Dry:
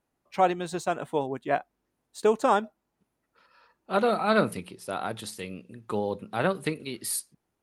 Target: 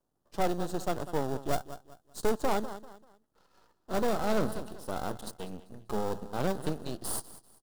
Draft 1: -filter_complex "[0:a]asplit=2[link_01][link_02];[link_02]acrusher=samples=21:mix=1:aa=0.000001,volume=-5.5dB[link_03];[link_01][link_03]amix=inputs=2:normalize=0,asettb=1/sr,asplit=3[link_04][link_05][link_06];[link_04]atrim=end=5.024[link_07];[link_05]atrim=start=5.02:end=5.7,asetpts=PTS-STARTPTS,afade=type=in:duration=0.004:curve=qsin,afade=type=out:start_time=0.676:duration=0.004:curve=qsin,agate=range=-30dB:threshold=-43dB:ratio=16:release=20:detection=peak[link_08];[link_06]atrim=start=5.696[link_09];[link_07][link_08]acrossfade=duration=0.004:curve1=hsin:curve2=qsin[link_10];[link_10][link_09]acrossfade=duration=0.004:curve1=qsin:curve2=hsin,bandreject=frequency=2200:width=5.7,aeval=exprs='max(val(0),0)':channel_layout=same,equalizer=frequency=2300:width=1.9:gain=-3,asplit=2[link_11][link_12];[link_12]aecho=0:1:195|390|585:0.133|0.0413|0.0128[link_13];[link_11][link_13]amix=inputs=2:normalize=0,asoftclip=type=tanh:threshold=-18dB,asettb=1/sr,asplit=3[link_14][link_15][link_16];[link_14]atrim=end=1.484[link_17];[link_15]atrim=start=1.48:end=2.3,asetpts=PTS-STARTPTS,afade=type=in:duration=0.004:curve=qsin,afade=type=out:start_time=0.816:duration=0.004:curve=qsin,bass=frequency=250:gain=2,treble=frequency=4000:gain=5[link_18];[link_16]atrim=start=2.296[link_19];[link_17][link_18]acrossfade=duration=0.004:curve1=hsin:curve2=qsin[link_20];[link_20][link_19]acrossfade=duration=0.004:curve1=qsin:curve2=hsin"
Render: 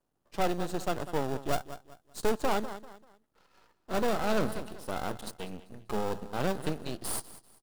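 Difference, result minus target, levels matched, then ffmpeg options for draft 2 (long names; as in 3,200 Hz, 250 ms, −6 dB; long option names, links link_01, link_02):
2,000 Hz band +2.5 dB
-filter_complex "[0:a]asplit=2[link_01][link_02];[link_02]acrusher=samples=21:mix=1:aa=0.000001,volume=-5.5dB[link_03];[link_01][link_03]amix=inputs=2:normalize=0,asettb=1/sr,asplit=3[link_04][link_05][link_06];[link_04]atrim=end=5.024[link_07];[link_05]atrim=start=5.02:end=5.7,asetpts=PTS-STARTPTS,afade=type=in:duration=0.004:curve=qsin,afade=type=out:start_time=0.676:duration=0.004:curve=qsin,agate=range=-30dB:threshold=-43dB:ratio=16:release=20:detection=peak[link_08];[link_06]atrim=start=5.696[link_09];[link_07][link_08]acrossfade=duration=0.004:curve1=hsin:curve2=qsin[link_10];[link_10][link_09]acrossfade=duration=0.004:curve1=qsin:curve2=hsin,bandreject=frequency=2200:width=5.7,aeval=exprs='max(val(0),0)':channel_layout=same,equalizer=frequency=2300:width=1.9:gain=-12,asplit=2[link_11][link_12];[link_12]aecho=0:1:195|390|585:0.133|0.0413|0.0128[link_13];[link_11][link_13]amix=inputs=2:normalize=0,asoftclip=type=tanh:threshold=-18dB,asettb=1/sr,asplit=3[link_14][link_15][link_16];[link_14]atrim=end=1.484[link_17];[link_15]atrim=start=1.48:end=2.3,asetpts=PTS-STARTPTS,afade=type=in:duration=0.004:curve=qsin,afade=type=out:start_time=0.816:duration=0.004:curve=qsin,bass=frequency=250:gain=2,treble=frequency=4000:gain=5[link_18];[link_16]atrim=start=2.296[link_19];[link_17][link_18]acrossfade=duration=0.004:curve1=hsin:curve2=qsin[link_20];[link_20][link_19]acrossfade=duration=0.004:curve1=qsin:curve2=hsin"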